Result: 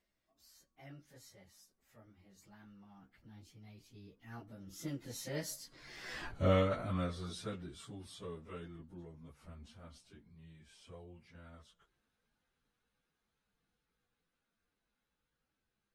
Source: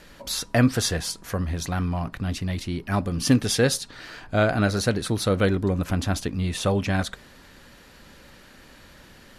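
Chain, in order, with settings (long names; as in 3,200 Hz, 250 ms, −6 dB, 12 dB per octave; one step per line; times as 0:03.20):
source passing by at 0:03.68, 46 m/s, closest 3.1 metres
time stretch by phase vocoder 1.7×
level +2 dB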